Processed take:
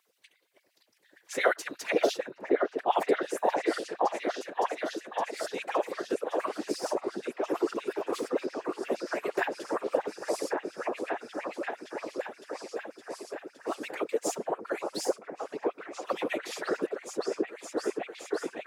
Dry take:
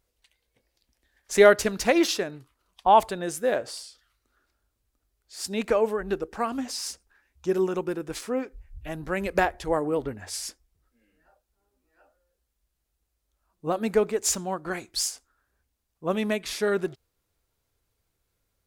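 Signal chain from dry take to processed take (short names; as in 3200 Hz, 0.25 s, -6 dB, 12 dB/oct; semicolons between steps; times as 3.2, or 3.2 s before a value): on a send: repeats that get brighter 0.564 s, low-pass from 750 Hz, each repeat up 1 oct, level 0 dB; on the sum: whisperiser; LFO high-pass sine 8.6 Hz 300–2800 Hz; three-band squash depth 40%; gain -8.5 dB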